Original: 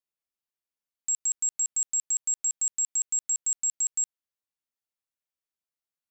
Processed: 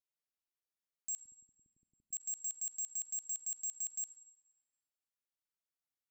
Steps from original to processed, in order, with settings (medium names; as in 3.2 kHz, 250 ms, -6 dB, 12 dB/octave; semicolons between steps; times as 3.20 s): 1.22–2.13 s: inverse Chebyshev low-pass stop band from 710 Hz, stop band 50 dB; Schroeder reverb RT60 0.99 s, combs from 32 ms, DRR 18 dB; overload inside the chain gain 30.5 dB; trim -6 dB